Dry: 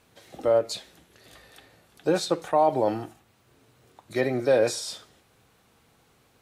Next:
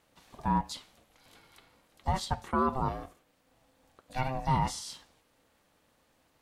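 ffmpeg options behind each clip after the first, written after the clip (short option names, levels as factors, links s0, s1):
-af "aeval=exprs='val(0)*sin(2*PI*390*n/s)':c=same,volume=0.631"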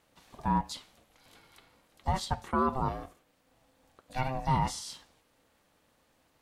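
-af anull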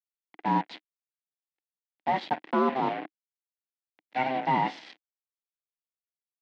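-af "acrusher=bits=5:mix=0:aa=0.5,highpass=f=200:w=0.5412,highpass=f=200:w=1.3066,equalizer=f=310:t=q:w=4:g=8,equalizer=f=750:t=q:w=4:g=5,equalizer=f=1200:t=q:w=4:g=-7,equalizer=f=2000:t=q:w=4:g=6,lowpass=f=3400:w=0.5412,lowpass=f=3400:w=1.3066,volume=1.5"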